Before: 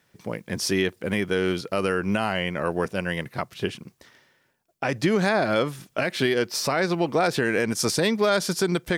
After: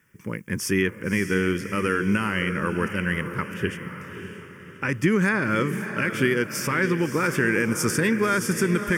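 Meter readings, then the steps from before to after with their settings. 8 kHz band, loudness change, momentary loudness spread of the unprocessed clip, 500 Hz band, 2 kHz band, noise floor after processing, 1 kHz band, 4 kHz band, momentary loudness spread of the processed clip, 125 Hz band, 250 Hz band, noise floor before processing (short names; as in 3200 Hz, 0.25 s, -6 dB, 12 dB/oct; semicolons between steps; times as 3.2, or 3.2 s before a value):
0.0 dB, +0.5 dB, 9 LU, -2.5 dB, +3.5 dB, -44 dBFS, -1.0 dB, -5.5 dB, 13 LU, +3.5 dB, +2.5 dB, -67 dBFS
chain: fixed phaser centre 1700 Hz, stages 4; diffused feedback echo 0.594 s, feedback 43%, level -9 dB; gain +3.5 dB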